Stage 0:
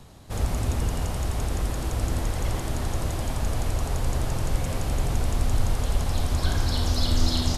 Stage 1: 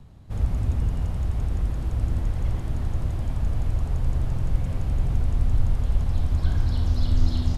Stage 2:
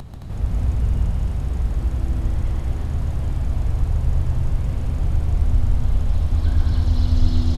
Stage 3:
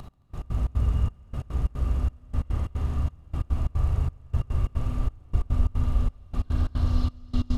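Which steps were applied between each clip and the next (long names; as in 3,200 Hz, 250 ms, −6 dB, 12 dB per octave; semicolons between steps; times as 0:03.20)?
bass and treble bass +11 dB, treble −8 dB; level −8.5 dB
upward compression, threshold −25 dBFS; on a send: loudspeakers that aren't time-aligned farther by 47 metres −4 dB, 75 metres −4 dB
convolution reverb RT60 1.3 s, pre-delay 27 ms, DRR 0.5 dB; gate pattern "x...x.xx.xxx" 180 BPM −24 dB; hollow resonant body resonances 1,200/2,800 Hz, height 12 dB, ringing for 35 ms; level −7 dB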